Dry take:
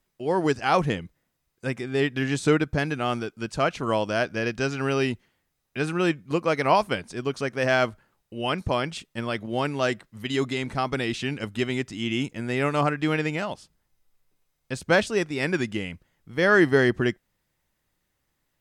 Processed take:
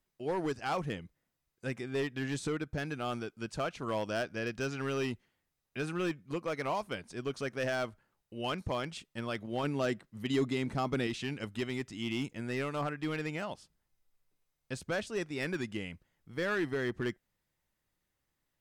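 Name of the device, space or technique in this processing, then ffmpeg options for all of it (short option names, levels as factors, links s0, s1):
limiter into clipper: -filter_complex "[0:a]alimiter=limit=0.211:level=0:latency=1:release=492,asoftclip=type=hard:threshold=0.106,asettb=1/sr,asplit=3[s0][s1][s2];[s0]atrim=end=9.634[s3];[s1]atrim=start=9.63:end=11.07,asetpts=PTS-STARTPTS,afade=t=in:d=0.004:c=qsin,afade=t=out:st=1.436:d=0.004:c=qsin,equalizer=f=220:t=o:w=2.4:g=6[s4];[s2]atrim=start=11.066[s5];[s3][s4]acrossfade=d=0.004:c1=hsin:c2=qsin[s6];[s6][s5]acrossfade=d=0.004:c1=qsin:c2=hsin,volume=0.422"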